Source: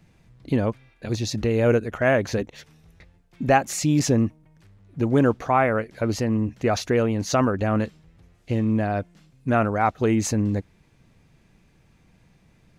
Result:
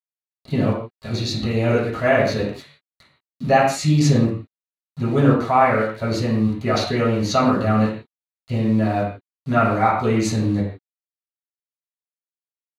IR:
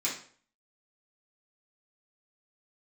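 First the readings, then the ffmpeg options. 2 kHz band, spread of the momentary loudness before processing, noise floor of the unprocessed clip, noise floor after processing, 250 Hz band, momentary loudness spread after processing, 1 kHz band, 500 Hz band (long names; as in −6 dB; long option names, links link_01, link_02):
+3.0 dB, 10 LU, −59 dBFS, below −85 dBFS, +3.0 dB, 12 LU, +4.5 dB, +2.5 dB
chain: -filter_complex "[0:a]aeval=exprs='val(0)*gte(abs(val(0)),0.00944)':channel_layout=same,equalizer=frequency=4500:width_type=o:width=0.25:gain=3[link_01];[1:a]atrim=start_sample=2205,atrim=end_sample=4410,asetrate=24696,aresample=44100[link_02];[link_01][link_02]afir=irnorm=-1:irlink=0,volume=-7dB"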